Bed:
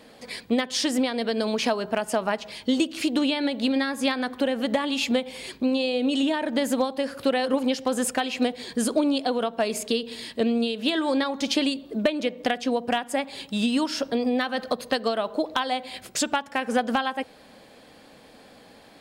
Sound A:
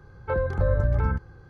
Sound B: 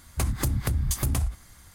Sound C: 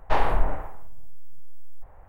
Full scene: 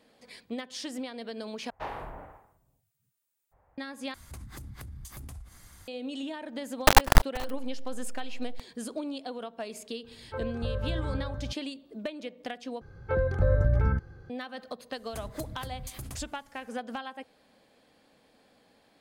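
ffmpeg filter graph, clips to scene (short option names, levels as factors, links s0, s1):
-filter_complex "[3:a]asplit=2[s0][s1];[2:a]asplit=2[s2][s3];[1:a]asplit=2[s4][s5];[0:a]volume=0.224[s6];[s0]highpass=60[s7];[s2]acompressor=threshold=0.01:ratio=6:attack=3.2:release=140:knee=1:detection=peak[s8];[s1]acrusher=bits=3:dc=4:mix=0:aa=0.000001[s9];[s4]aecho=1:1:501:0.596[s10];[s5]equalizer=f=1000:w=3.4:g=-8[s11];[s3]equalizer=f=71:t=o:w=0.77:g=-4.5[s12];[s6]asplit=4[s13][s14][s15][s16];[s13]atrim=end=1.704[s17];[s7]atrim=end=2.08,asetpts=PTS-STARTPTS,volume=0.237[s18];[s14]atrim=start=3.776:end=4.144[s19];[s8]atrim=end=1.74,asetpts=PTS-STARTPTS,volume=0.841[s20];[s15]atrim=start=5.876:end=12.814[s21];[s11]atrim=end=1.49,asetpts=PTS-STARTPTS,volume=0.891[s22];[s16]atrim=start=14.296[s23];[s9]atrim=end=2.08,asetpts=PTS-STARTPTS,volume=0.841,afade=t=in:d=0.004:c=hsin,afade=t=out:st=2.076:d=0.004:c=hsin,adelay=6760[s24];[s10]atrim=end=1.49,asetpts=PTS-STARTPTS,volume=0.316,afade=t=in:d=0.004:c=hsin,afade=t=out:st=1.486:d=0.004:c=hsin,adelay=10040[s25];[s12]atrim=end=1.74,asetpts=PTS-STARTPTS,volume=0.211,afade=t=in:d=0.004:c=hsin,afade=t=out:st=1.736:d=0.004:c=hsin,adelay=14960[s26];[s17][s18]acrossfade=d=0.004:c1=hsin:c2=hsin[s27];[s27][s19]acrossfade=d=0.004:c1=hsin:c2=hsin[s28];[s28][s20]acrossfade=d=0.004:c1=hsin:c2=hsin[s29];[s29][s21]acrossfade=d=0.004:c1=hsin:c2=hsin[s30];[s30][s22]acrossfade=d=0.004:c1=hsin:c2=hsin[s31];[s31][s23]acrossfade=d=0.004:c1=hsin:c2=hsin[s32];[s32][s24][s25][s26]amix=inputs=4:normalize=0"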